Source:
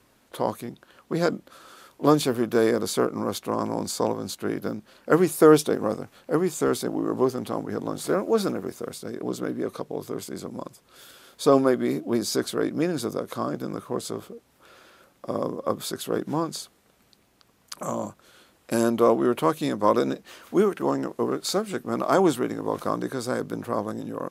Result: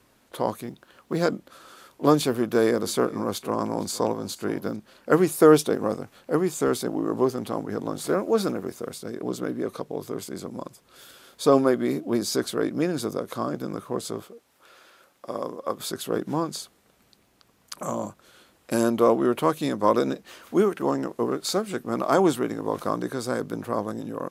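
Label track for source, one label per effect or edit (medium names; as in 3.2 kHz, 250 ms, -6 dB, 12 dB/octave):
0.660000	1.250000	companded quantiser 8-bit
2.330000	4.760000	delay 462 ms -19.5 dB
14.220000	15.800000	bass shelf 300 Hz -11.5 dB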